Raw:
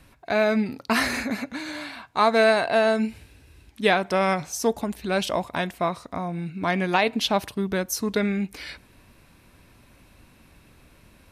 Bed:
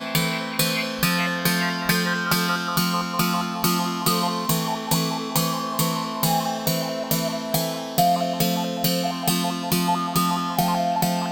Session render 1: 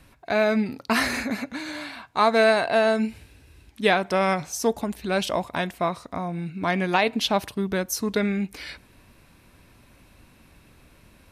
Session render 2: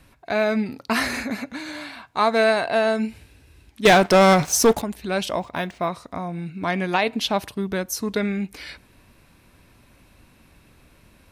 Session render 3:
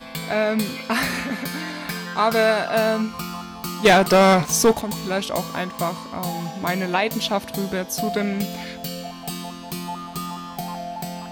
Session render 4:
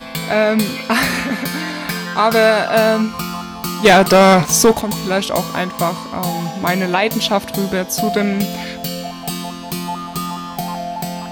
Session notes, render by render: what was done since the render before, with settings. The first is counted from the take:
no audible change
3.85–4.82 s: waveshaping leveller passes 3; 5.39–5.87 s: decimation joined by straight lines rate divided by 3×
add bed -9 dB
trim +6.5 dB; peak limiter -3 dBFS, peak gain reduction 2.5 dB

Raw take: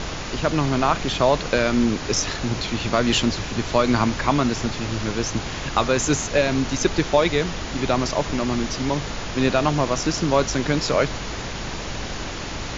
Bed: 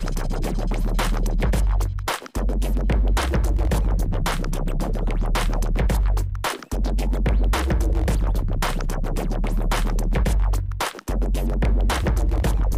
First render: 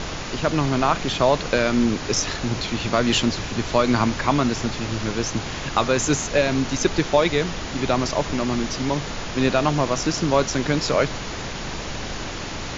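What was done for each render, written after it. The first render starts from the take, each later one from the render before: de-hum 50 Hz, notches 2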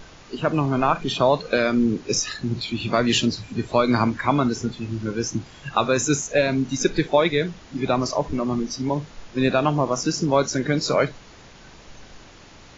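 noise print and reduce 16 dB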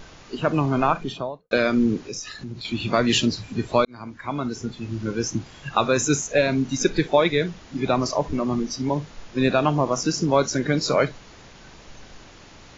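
0.81–1.51 s: studio fade out; 2.02–2.65 s: compression 2:1, threshold -37 dBFS; 3.85–5.10 s: fade in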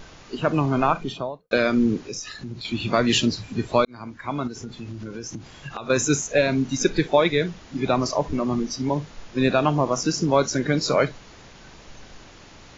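0.86–1.29 s: band-stop 1.7 kHz; 4.47–5.90 s: compression, threshold -30 dBFS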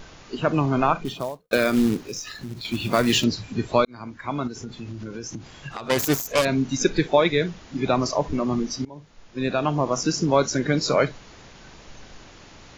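1.05–3.24 s: short-mantissa float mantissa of 2-bit; 5.71–6.45 s: self-modulated delay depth 0.41 ms; 8.85–10.01 s: fade in linear, from -23.5 dB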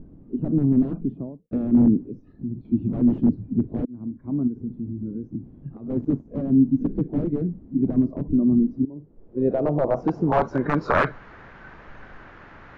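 integer overflow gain 12.5 dB; low-pass sweep 260 Hz -> 1.6 kHz, 8.64–11.23 s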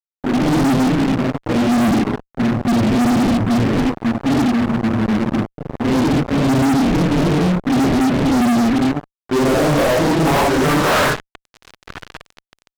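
phase randomisation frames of 200 ms; fuzz box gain 39 dB, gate -36 dBFS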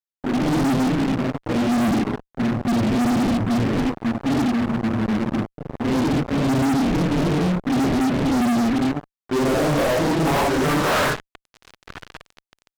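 trim -4.5 dB

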